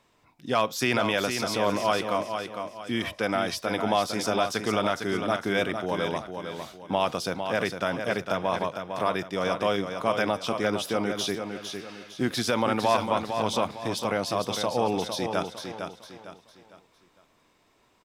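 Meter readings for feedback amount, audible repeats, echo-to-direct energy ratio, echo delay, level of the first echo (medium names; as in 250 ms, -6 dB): 36%, 4, -6.5 dB, 455 ms, -7.0 dB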